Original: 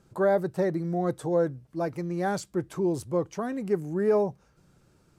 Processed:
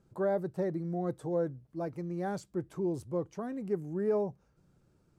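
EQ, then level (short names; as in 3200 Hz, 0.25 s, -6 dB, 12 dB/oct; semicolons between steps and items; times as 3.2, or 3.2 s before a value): tilt shelf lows +3.5 dB, about 870 Hz; -8.5 dB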